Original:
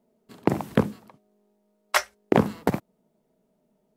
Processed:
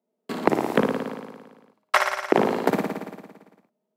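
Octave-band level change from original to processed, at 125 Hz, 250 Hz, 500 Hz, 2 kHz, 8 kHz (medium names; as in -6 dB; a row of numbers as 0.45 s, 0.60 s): -5.5 dB, +0.5 dB, +4.0 dB, +4.5 dB, -3.0 dB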